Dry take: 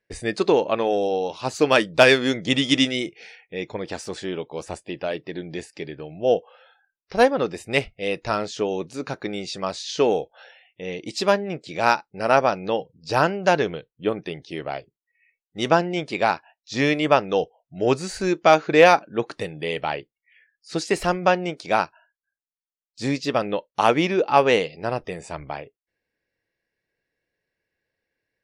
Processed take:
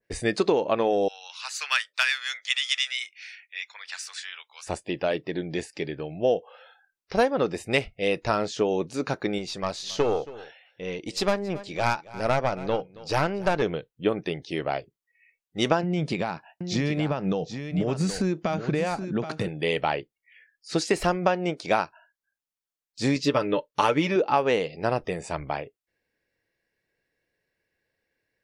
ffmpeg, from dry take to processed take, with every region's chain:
-filter_complex "[0:a]asettb=1/sr,asplit=3[s0][s1][s2];[s0]atrim=end=1.084[s3];[s1]atrim=start=1.08:end=4.67,asetpts=PTS-STARTPTS,afade=t=in:d=0.004:c=qsin,afade=t=out:st=3.586:d=0.004:c=qsin,highpass=f=1400:w=0.5412,highpass=f=1400:w=1.3066,bandreject=f=3200:w=24[s4];[s2]atrim=start=4.666[s5];[s3][s4]acrossfade=d=0.004:c1=hsin:c2=qsin[s6];[s6][s5]acrossfade=d=0.004:c1=qsin:c2=hsin,asettb=1/sr,asplit=3[s7][s8][s9];[s7]atrim=end=9.384[s10];[s8]atrim=start=9.38:end=13.62,asetpts=PTS-STARTPTS,afade=t=in:d=0.004:c=qsin,afade=t=out:st=4.236:d=0.004:c=qsin,aeval=exprs='(tanh(3.98*val(0)+0.65)-tanh(0.65))/3.98':c=same,aecho=1:1:274:0.1,atrim=end_sample=186984[s11];[s9]atrim=start=13.616[s12];[s10][s11]acrossfade=d=0.004:c1=hsin:c2=qsin[s13];[s13][s12]acrossfade=d=0.004:c1=qsin:c2=hsin,asettb=1/sr,asplit=3[s14][s15][s16];[s14]atrim=end=15.834[s17];[s15]atrim=start=15.83:end=19.48,asetpts=PTS-STARTPTS,afade=t=in:d=0.004:c=qsin,afade=t=out:st=3.646:d=0.004:c=qsin,acompressor=threshold=0.0398:ratio=5:attack=3.2:release=140:knee=1:detection=peak,equalizer=f=160:t=o:w=1.1:g=12,aecho=1:1:775:0.335,atrim=end_sample=160965[s18];[s16]atrim=start=19.476[s19];[s17][s18]acrossfade=d=0.004:c1=hsin:c2=qsin[s20];[s20][s19]acrossfade=d=0.004:c1=qsin:c2=hsin,asettb=1/sr,asplit=3[s21][s22][s23];[s21]atrim=end=23.154[s24];[s22]atrim=start=23.15:end=24.16,asetpts=PTS-STARTPTS,afade=t=in:d=0.004:c=qsin,afade=t=out:st=1.006:d=0.004:c=qsin,bandreject=f=730:w=5.1,aecho=1:1:6.8:0.52,atrim=end_sample=44541[s25];[s23]atrim=start=24.156[s26];[s24][s25]acrossfade=d=0.004:c1=hsin:c2=qsin[s27];[s27][s26]acrossfade=d=0.004:c1=qsin:c2=hsin,acompressor=threshold=0.1:ratio=6,adynamicequalizer=threshold=0.0112:dfrequency=1600:dqfactor=0.7:tfrequency=1600:tqfactor=0.7:attack=5:release=100:ratio=0.375:range=2:mode=cutabove:tftype=highshelf,volume=1.26"

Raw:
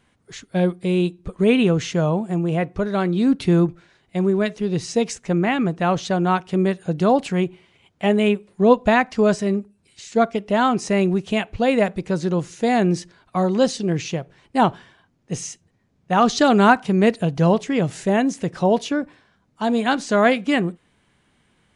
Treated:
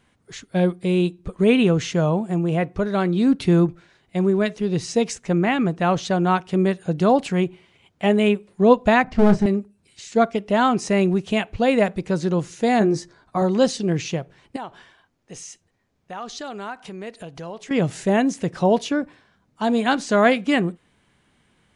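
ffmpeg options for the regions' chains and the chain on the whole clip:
-filter_complex "[0:a]asettb=1/sr,asplit=3[s0][s1][s2];[s0]atrim=end=9.044[s3];[s1]atrim=start=9.04:end=9.46,asetpts=PTS-STARTPTS,afade=t=in:d=0.004:c=qsin,afade=t=out:st=0.416:d=0.004:c=qsin,aemphasis=mode=reproduction:type=riaa,aeval=exprs='clip(val(0),-1,0.126)':c=same,asplit=2[s4][s5];[s5]adelay=30,volume=0.282[s6];[s4][s6]amix=inputs=2:normalize=0,atrim=end_sample=18522[s7];[s2]atrim=start=9.456[s8];[s3][s7]acrossfade=d=0.004:c1=hsin:c2=qsin[s9];[s9][s8]acrossfade=d=0.004:c1=qsin:c2=hsin,asettb=1/sr,asplit=3[s10][s11][s12];[s10]atrim=end=12.794[s13];[s11]atrim=start=12.79:end=13.42,asetpts=PTS-STARTPTS,afade=t=in:d=0.004:c=qsin,afade=t=out:st=0.626:d=0.004:c=qsin,lowpass=8900,equalizer=f=2800:w=2.1:g=-11,asplit=2[s14][s15];[s15]adelay=14,volume=0.531[s16];[s14][s16]amix=inputs=2:normalize=0,atrim=end_sample=27783[s17];[s12]atrim=start=13.416[s18];[s13][s17]acrossfade=d=0.004:c1=hsin:c2=qsin[s19];[s19][s18]acrossfade=d=0.004:c1=qsin:c2=hsin,asettb=1/sr,asplit=3[s20][s21][s22];[s20]atrim=end=14.564[s23];[s21]atrim=start=14.56:end=17.71,asetpts=PTS-STARTPTS,afade=t=in:d=0.004:c=qsin,afade=t=out:st=3.146:d=0.004:c=qsin,equalizer=f=150:w=0.62:g=-9.5,acompressor=threshold=0.0141:ratio=2.5:attack=3.2:release=140:knee=1:detection=peak[s24];[s22]atrim=start=17.706[s25];[s23][s24]acrossfade=d=0.004:c1=hsin:c2=qsin[s26];[s26][s25]acrossfade=d=0.004:c1=qsin:c2=hsin"

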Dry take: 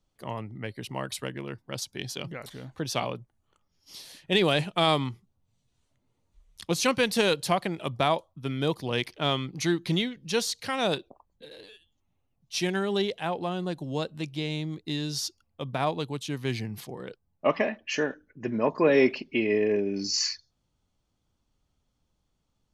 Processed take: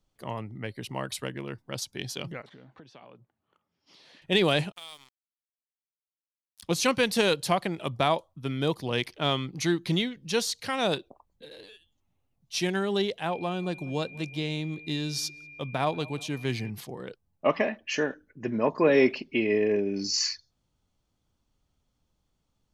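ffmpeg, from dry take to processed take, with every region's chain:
-filter_complex "[0:a]asettb=1/sr,asplit=3[s0][s1][s2];[s0]atrim=end=2.414[s3];[s1]atrim=start=2.41:end=4.22,asetpts=PTS-STARTPTS,afade=t=in:d=0.004:c=qsin,afade=t=out:st=1.806:d=0.004:c=qsin,acompressor=threshold=0.00631:ratio=16:attack=3.2:release=140:knee=1:detection=peak,highpass=160,lowpass=2900[s4];[s2]atrim=start=4.216[s5];[s3][s4]acrossfade=d=0.004:c1=hsin:c2=qsin[s6];[s6][s5]acrossfade=d=0.004:c1=qsin:c2=hsin,asettb=1/sr,asplit=3[s7][s8][s9];[s7]atrim=end=4.724[s10];[s8]atrim=start=4.72:end=6.63,asetpts=PTS-STARTPTS,afade=t=in:d=0.004:c=qsin,afade=t=out:st=1.906:d=0.004:c=qsin,aderivative,acompressor=threshold=0.01:ratio=2.5:attack=3.2:release=140:knee=1:detection=peak,aeval=exprs='sgn(val(0))*max(abs(val(0))-0.00299,0)':c=same[s11];[s9]atrim=start=6.626[s12];[s10][s11]acrossfade=d=0.004:c1=hsin:c2=qsin[s13];[s13][s12]acrossfade=d=0.004:c1=qsin:c2=hsin,asettb=1/sr,asplit=3[s14][s15][s16];[s14]atrim=end=13.314[s17];[s15]atrim=start=13.31:end=16.7,asetpts=PTS-STARTPTS,afade=t=in:d=0.004:c=qsin,afade=t=out:st=3.386:d=0.004:c=qsin,asplit=2[s18][s19];[s19]adelay=187,lowpass=f=1600:p=1,volume=0.0841,asplit=2[s20][s21];[s21]adelay=187,lowpass=f=1600:p=1,volume=0.55,asplit=2[s22][s23];[s23]adelay=187,lowpass=f=1600:p=1,volume=0.55,asplit=2[s24][s25];[s25]adelay=187,lowpass=f=1600:p=1,volume=0.55[s26];[s18][s20][s22][s24][s26]amix=inputs=5:normalize=0,atrim=end_sample=149499,aeval=exprs='val(0)+0.00562*sin(2*PI*2400*n/s)':c=same[s27];[s16]atrim=start=16.696[s28];[s17][s27]acrossfade=d=0.004:c1=hsin:c2=qsin[s29];[s29][s28]acrossfade=d=0.004:c1=qsin:c2=hsin"

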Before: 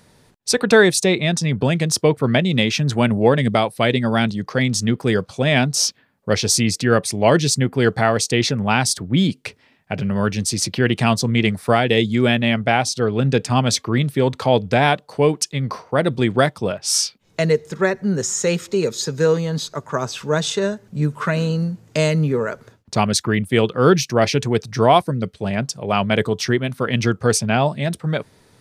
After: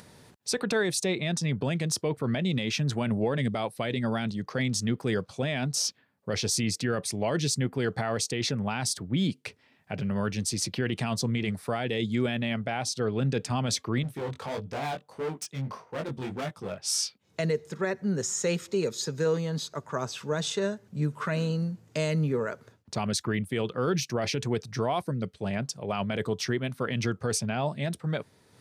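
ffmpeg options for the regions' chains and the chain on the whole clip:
-filter_complex "[0:a]asettb=1/sr,asplit=3[s0][s1][s2];[s0]atrim=end=14.034[s3];[s1]atrim=start=14.03:end=16.78,asetpts=PTS-STARTPTS,afade=t=in:d=0.004:c=qsin,afade=t=out:st=2.746:d=0.004:c=qsin,equalizer=f=4400:w=3.8:g=-5.5,volume=8.91,asoftclip=hard,volume=0.112,flanger=delay=18:depth=4.5:speed=1.6[s4];[s2]atrim=start=16.776[s5];[s3][s4]acrossfade=d=0.004:c1=hsin:c2=qsin[s6];[s6][s5]acrossfade=d=0.004:c1=qsin:c2=hsin,highpass=57,acompressor=mode=upward:threshold=0.0158:ratio=2.5,alimiter=limit=0.316:level=0:latency=1:release=25,volume=0.398"

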